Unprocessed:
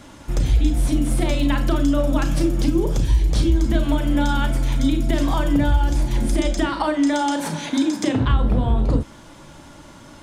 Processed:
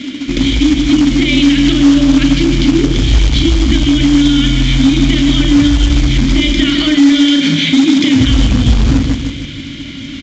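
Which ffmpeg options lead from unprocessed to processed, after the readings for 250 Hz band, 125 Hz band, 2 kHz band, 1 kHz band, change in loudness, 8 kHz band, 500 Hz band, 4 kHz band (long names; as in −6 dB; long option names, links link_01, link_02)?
+12.5 dB, +7.5 dB, +11.5 dB, −1.5 dB, +10.0 dB, +9.0 dB, +3.0 dB, +18.0 dB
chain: -filter_complex "[0:a]asplit=2[link_01][link_02];[link_02]acompressor=threshold=-25dB:ratio=12,volume=-3dB[link_03];[link_01][link_03]amix=inputs=2:normalize=0,asplit=3[link_04][link_05][link_06];[link_04]bandpass=frequency=270:width_type=q:width=8,volume=0dB[link_07];[link_05]bandpass=frequency=2290:width_type=q:width=8,volume=-6dB[link_08];[link_06]bandpass=frequency=3010:width_type=q:width=8,volume=-9dB[link_09];[link_07][link_08][link_09]amix=inputs=3:normalize=0,equalizer=frequency=3800:width_type=o:width=1.1:gain=8.5,aecho=1:1:153|306|459|612|765|918:0.398|0.191|0.0917|0.044|0.0211|0.0101,asubboost=boost=11.5:cutoff=82,acontrast=79,acrusher=bits=3:mode=log:mix=0:aa=0.000001,aresample=16000,aresample=44100,alimiter=level_in=17.5dB:limit=-1dB:release=50:level=0:latency=1,volume=-1dB" -ar 32000 -c:a libvorbis -b:a 64k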